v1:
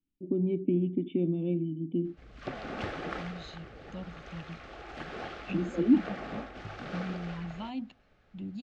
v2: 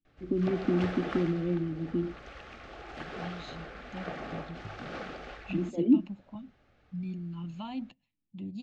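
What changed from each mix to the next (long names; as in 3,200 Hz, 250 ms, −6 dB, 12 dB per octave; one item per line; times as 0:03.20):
background: entry −2.00 s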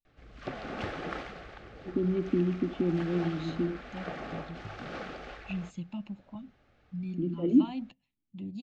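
first voice: entry +1.65 s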